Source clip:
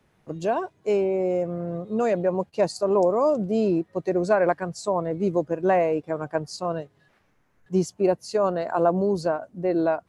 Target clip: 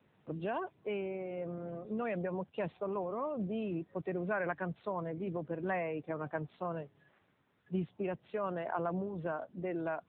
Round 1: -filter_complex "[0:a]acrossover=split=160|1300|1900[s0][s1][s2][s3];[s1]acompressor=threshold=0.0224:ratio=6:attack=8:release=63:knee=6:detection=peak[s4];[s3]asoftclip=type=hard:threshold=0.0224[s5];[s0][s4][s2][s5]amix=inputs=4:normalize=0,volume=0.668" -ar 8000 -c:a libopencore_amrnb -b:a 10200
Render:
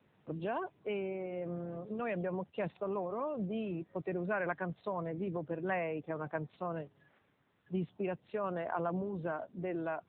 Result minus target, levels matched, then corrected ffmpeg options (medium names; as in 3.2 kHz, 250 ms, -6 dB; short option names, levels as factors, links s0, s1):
hard clipper: distortion -8 dB
-filter_complex "[0:a]acrossover=split=160|1300|1900[s0][s1][s2][s3];[s1]acompressor=threshold=0.0224:ratio=6:attack=8:release=63:knee=6:detection=peak[s4];[s3]asoftclip=type=hard:threshold=0.0106[s5];[s0][s4][s2][s5]amix=inputs=4:normalize=0,volume=0.668" -ar 8000 -c:a libopencore_amrnb -b:a 10200